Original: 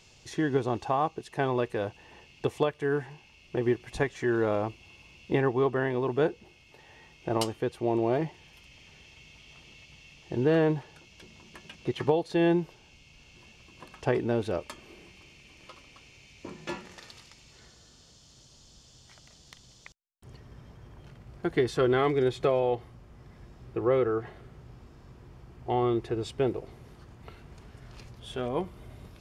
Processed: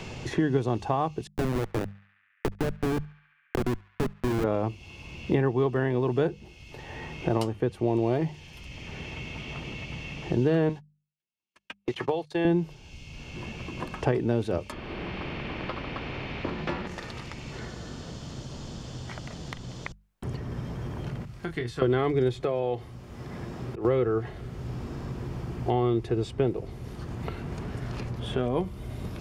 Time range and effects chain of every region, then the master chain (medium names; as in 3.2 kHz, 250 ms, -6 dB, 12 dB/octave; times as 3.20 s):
1.27–4.44 s: Schmitt trigger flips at -26 dBFS + band-passed feedback delay 70 ms, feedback 79%, band-pass 2 kHz, level -23 dB
10.69–12.45 s: high-pass 850 Hz 6 dB/octave + gate -45 dBFS, range -57 dB
14.72–16.87 s: distance through air 400 m + spectrum-flattening compressor 2:1
21.25–21.82 s: amplifier tone stack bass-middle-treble 5-5-5 + doubling 25 ms -6 dB
22.40–23.85 s: high-pass 200 Hz 6 dB/octave + compression 1.5:1, threshold -32 dBFS + slow attack 314 ms
whole clip: bass shelf 300 Hz +8.5 dB; hum notches 50/100/150/200 Hz; three bands compressed up and down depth 70%